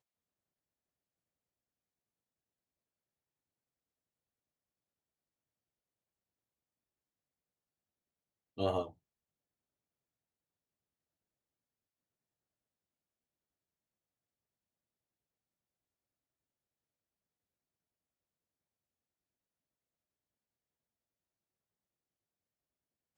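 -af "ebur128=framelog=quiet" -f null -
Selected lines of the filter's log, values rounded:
Integrated loudness:
  I:         -36.9 LUFS
  Threshold: -48.2 LUFS
Loudness range:
  LRA:         3.6 LU
  Threshold: -64.3 LUFS
  LRA low:   -47.5 LUFS
  LRA high:  -43.9 LUFS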